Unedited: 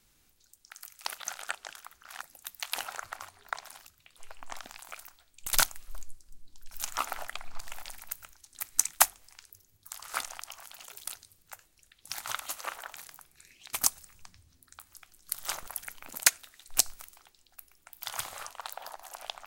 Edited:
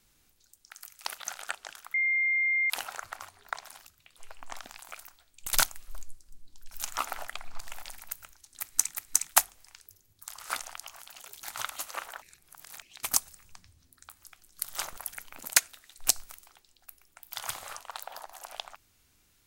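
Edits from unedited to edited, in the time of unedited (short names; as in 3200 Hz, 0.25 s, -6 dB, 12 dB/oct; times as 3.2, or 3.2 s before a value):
1.94–2.7 bleep 2110 Hz -23.5 dBFS
8.58–8.94 loop, 2 plays
11.07–12.13 cut
12.92–13.52 reverse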